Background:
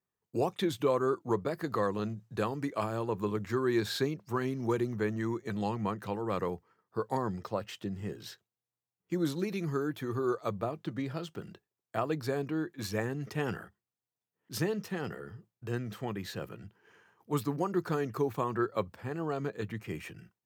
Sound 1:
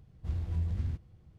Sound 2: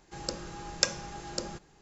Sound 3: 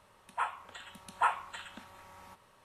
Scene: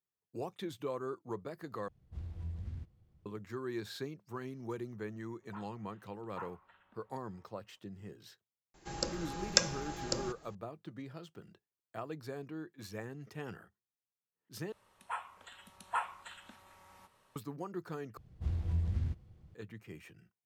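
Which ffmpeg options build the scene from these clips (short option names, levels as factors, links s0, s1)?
-filter_complex "[1:a]asplit=2[s0][s1];[3:a]asplit=2[s2][s3];[0:a]volume=0.299[s4];[s2]lowpass=1900[s5];[s3]highshelf=f=4100:g=3[s6];[s4]asplit=4[s7][s8][s9][s10];[s7]atrim=end=1.884[s11];[s0]atrim=end=1.38,asetpts=PTS-STARTPTS,volume=0.335[s12];[s8]atrim=start=3.256:end=14.724[s13];[s6]atrim=end=2.64,asetpts=PTS-STARTPTS,volume=0.473[s14];[s9]atrim=start=17.356:end=18.174[s15];[s1]atrim=end=1.38,asetpts=PTS-STARTPTS,volume=0.891[s16];[s10]atrim=start=19.546[s17];[s5]atrim=end=2.64,asetpts=PTS-STARTPTS,volume=0.141,afade=t=in:d=0.004:c=hsin,afade=t=out:st=2.636:d=0.004:c=hsin,adelay=5150[s18];[2:a]atrim=end=1.81,asetpts=PTS-STARTPTS,volume=0.944,afade=t=in:d=0.004:c=hsin,afade=t=out:st=1.806:d=0.004:c=hsin,adelay=385434S[s19];[s11][s12]acrossfade=d=0.004:c1=hsin:c2=hsin[s20];[s20][s13]acrossfade=d=0.004:c1=hsin:c2=hsin[s21];[s21][s14]acrossfade=d=0.004:c1=hsin:c2=hsin[s22];[s22][s15]acrossfade=d=0.004:c1=hsin:c2=hsin[s23];[s23][s16]acrossfade=d=0.004:c1=hsin:c2=hsin[s24];[s24][s17]acrossfade=d=0.004:c1=hsin:c2=hsin[s25];[s25][s18][s19]amix=inputs=3:normalize=0"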